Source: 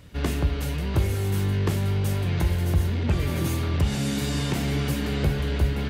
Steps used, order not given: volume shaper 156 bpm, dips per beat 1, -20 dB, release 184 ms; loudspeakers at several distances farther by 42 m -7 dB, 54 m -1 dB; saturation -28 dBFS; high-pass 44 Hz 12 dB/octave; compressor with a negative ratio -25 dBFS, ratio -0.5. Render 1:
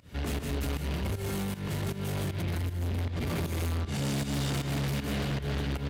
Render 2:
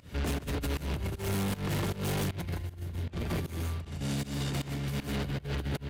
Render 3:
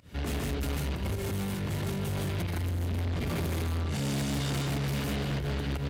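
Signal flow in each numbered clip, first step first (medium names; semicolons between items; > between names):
compressor with a negative ratio > loudspeakers at several distances > volume shaper > saturation > high-pass; loudspeakers at several distances > compressor with a negative ratio > high-pass > saturation > volume shaper; volume shaper > compressor with a negative ratio > loudspeakers at several distances > saturation > high-pass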